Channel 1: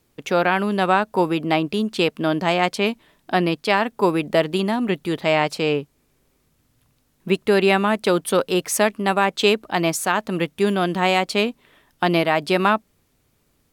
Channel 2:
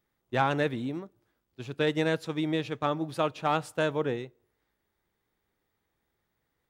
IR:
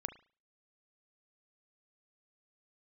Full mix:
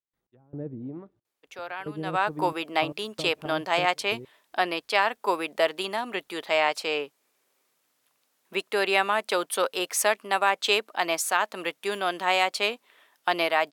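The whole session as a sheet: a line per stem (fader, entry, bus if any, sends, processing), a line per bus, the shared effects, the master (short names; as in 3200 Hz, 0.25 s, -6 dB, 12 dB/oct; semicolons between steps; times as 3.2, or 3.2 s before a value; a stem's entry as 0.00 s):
1.99 s -15.5 dB -> 2.28 s -2.5 dB, 1.25 s, no send, HPF 590 Hz 12 dB/oct
-3.5 dB, 0.00 s, no send, treble ducked by the level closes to 370 Hz, closed at -26.5 dBFS; step gate ".x..xxxxx." 113 bpm -24 dB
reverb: off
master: dry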